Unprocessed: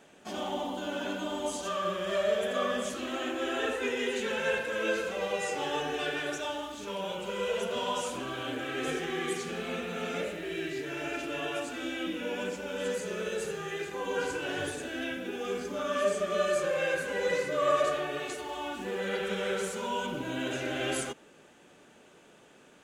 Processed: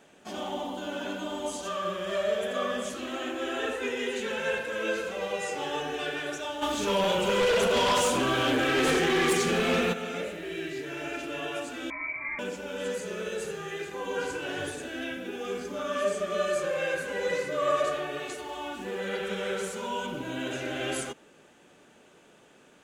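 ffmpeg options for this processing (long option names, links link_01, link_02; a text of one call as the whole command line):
ffmpeg -i in.wav -filter_complex "[0:a]asplit=3[link_01][link_02][link_03];[link_01]afade=type=out:start_time=6.61:duration=0.02[link_04];[link_02]aeval=exprs='0.1*sin(PI/2*2.51*val(0)/0.1)':channel_layout=same,afade=type=in:start_time=6.61:duration=0.02,afade=type=out:start_time=9.92:duration=0.02[link_05];[link_03]afade=type=in:start_time=9.92:duration=0.02[link_06];[link_04][link_05][link_06]amix=inputs=3:normalize=0,asettb=1/sr,asplit=3[link_07][link_08][link_09];[link_07]atrim=end=11.904[link_10];[link_08]atrim=start=11.9:end=12.39,asetpts=PTS-STARTPTS,afade=type=in:duration=0.004:curve=qsin,afade=type=out:start_time=0.486:duration=0.004:curve=qsin,lowpass=frequency=2200:width_type=q:width=0.5098,lowpass=frequency=2200:width_type=q:width=0.6013,lowpass=frequency=2200:width_type=q:width=0.9,lowpass=frequency=2200:width_type=q:width=2.563,afreqshift=-2600[link_11];[link_09]atrim=start=12.386[link_12];[link_10][link_11]acrossfade=duration=0.004:curve1=hsin:curve2=qsin[link_13];[link_13][link_12]acrossfade=duration=0.004:curve1=qsin:curve2=hsin" out.wav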